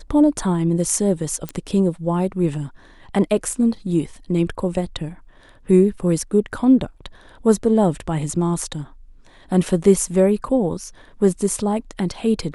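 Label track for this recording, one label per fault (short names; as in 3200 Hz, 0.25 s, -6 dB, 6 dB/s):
1.490000	1.490000	pop -12 dBFS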